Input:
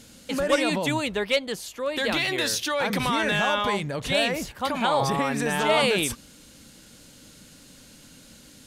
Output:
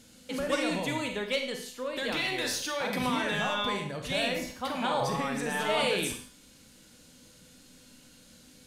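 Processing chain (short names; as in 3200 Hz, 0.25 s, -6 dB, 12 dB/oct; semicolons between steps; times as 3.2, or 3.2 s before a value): resonator 250 Hz, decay 0.49 s, harmonics all, mix 70%; on a send: reverb, pre-delay 35 ms, DRR 5 dB; on the sum: gain +2 dB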